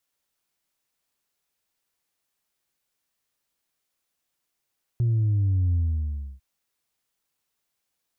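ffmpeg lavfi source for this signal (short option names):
-f lavfi -i "aevalsrc='0.106*clip((1.4-t)/0.66,0,1)*tanh(1.12*sin(2*PI*120*1.4/log(65/120)*(exp(log(65/120)*t/1.4)-1)))/tanh(1.12)':d=1.4:s=44100"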